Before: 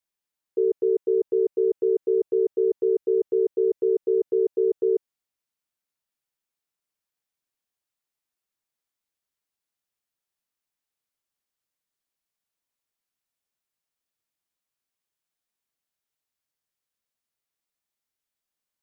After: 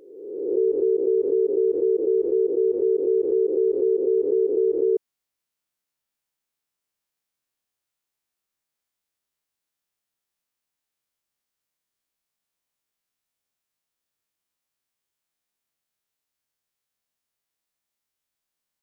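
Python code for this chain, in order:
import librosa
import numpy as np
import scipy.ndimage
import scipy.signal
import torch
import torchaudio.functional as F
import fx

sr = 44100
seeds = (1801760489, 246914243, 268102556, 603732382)

y = fx.spec_swells(x, sr, rise_s=1.18)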